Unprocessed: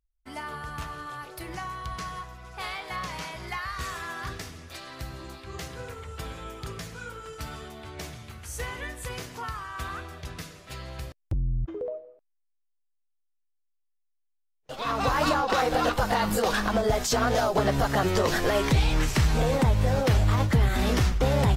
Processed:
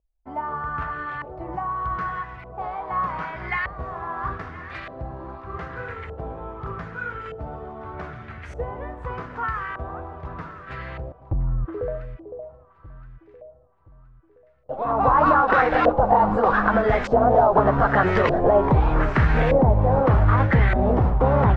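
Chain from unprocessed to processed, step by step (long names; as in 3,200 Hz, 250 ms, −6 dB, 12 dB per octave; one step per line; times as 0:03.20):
delay that swaps between a low-pass and a high-pass 510 ms, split 950 Hz, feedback 64%, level −11.5 dB
auto-filter low-pass saw up 0.82 Hz 610–2,200 Hz
level +3.5 dB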